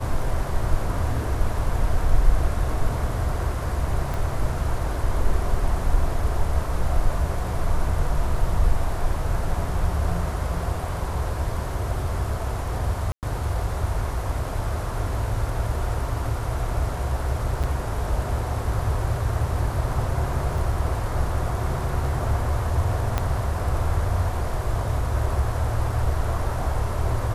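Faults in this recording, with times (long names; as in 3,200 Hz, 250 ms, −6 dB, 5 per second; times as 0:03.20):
0:04.14: click
0:13.12–0:13.23: drop-out 108 ms
0:17.63–0:17.64: drop-out 6.8 ms
0:20.58: drop-out 2.4 ms
0:23.18: click −9 dBFS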